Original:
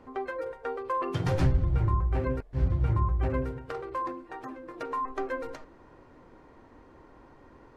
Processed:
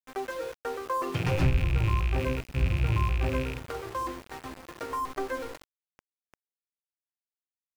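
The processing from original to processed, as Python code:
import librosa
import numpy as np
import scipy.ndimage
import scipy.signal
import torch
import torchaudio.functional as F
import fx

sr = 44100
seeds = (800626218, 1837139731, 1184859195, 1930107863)

y = fx.rattle_buzz(x, sr, strikes_db=-34.0, level_db=-25.0)
y = fx.echo_feedback(y, sr, ms=941, feedback_pct=42, wet_db=-21.0)
y = np.where(np.abs(y) >= 10.0 ** (-39.0 / 20.0), y, 0.0)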